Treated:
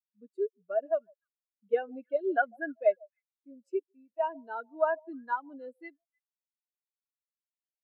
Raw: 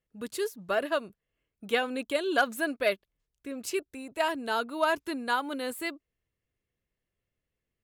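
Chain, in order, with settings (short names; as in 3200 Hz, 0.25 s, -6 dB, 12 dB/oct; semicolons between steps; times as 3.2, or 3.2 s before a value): on a send: delay with a stepping band-pass 0.15 s, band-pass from 670 Hz, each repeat 1.4 oct, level -11 dB; on the sum: spectral expander 2.5:1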